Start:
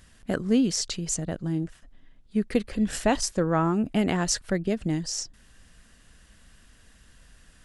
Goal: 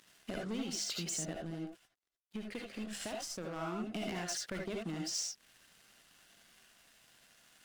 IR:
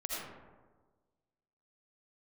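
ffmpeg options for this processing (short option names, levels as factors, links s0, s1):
-filter_complex "[0:a]highpass=f=140:w=0.5412,highpass=f=140:w=1.3066,equalizer=f=3000:t=o:w=1.6:g=7.5,bandreject=f=50:t=h:w=6,bandreject=f=100:t=h:w=6,bandreject=f=150:t=h:w=6,bandreject=f=200:t=h:w=6,bandreject=f=250:t=h:w=6,acompressor=threshold=0.0178:ratio=6,aeval=exprs='sgn(val(0))*max(abs(val(0))-0.00188,0)':c=same,asettb=1/sr,asplit=3[s0][s1][s2];[s0]atrim=end=1.334[s3];[s1]atrim=start=1.33:end=3.56,asetpts=PTS-STARTPTS,afade=t=in:d=0.004:c=qsin,afade=t=out:st=2.226:d=0.004:c=qsin,aeval=exprs='0.0841*(cos(1*acos(clip(val(0)/0.0841,-1,1)))-cos(1*PI/2))+0.0119*(cos(3*acos(clip(val(0)/0.0841,-1,1)))-cos(3*PI/2))+0.00376*(cos(6*acos(clip(val(0)/0.0841,-1,1)))-cos(6*PI/2))':c=same[s4];[s2]atrim=start=3.556[s5];[s3][s4]acrossfade=d=0.004:c1=hsin:c2=qsin[s6];[s6][s5]acrossfade=d=0.004:c1=qsin:c2=hsin,volume=50.1,asoftclip=hard,volume=0.02[s7];[1:a]atrim=start_sample=2205,atrim=end_sample=4410,asetrate=48510,aresample=44100[s8];[s7][s8]afir=irnorm=-1:irlink=0,volume=1.58"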